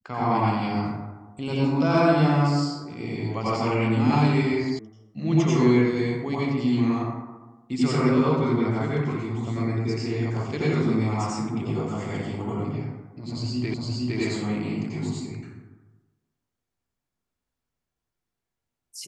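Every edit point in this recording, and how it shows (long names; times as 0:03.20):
0:04.79: cut off before it has died away
0:13.74: the same again, the last 0.46 s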